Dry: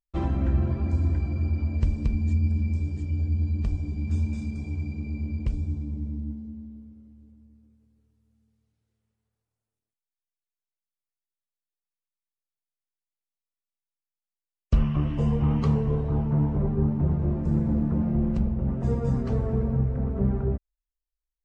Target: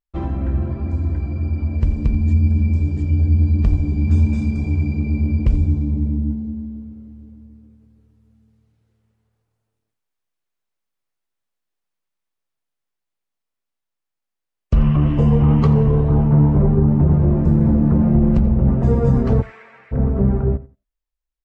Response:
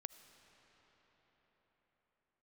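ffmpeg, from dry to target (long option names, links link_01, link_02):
-filter_complex "[0:a]highshelf=frequency=3600:gain=-9.5,aecho=1:1:88|176:0.141|0.0283,dynaudnorm=framelen=480:gausssize=9:maxgain=10dB,asplit=3[link_01][link_02][link_03];[link_01]afade=type=out:start_time=19.41:duration=0.02[link_04];[link_02]highpass=frequency=2100:width_type=q:width=2.9,afade=type=in:start_time=19.41:duration=0.02,afade=type=out:start_time=19.91:duration=0.02[link_05];[link_03]afade=type=in:start_time=19.91:duration=0.02[link_06];[link_04][link_05][link_06]amix=inputs=3:normalize=0[link_07];[1:a]atrim=start_sample=2205,atrim=end_sample=4410[link_08];[link_07][link_08]afir=irnorm=-1:irlink=0,alimiter=level_in=13dB:limit=-1dB:release=50:level=0:latency=1,volume=-5dB"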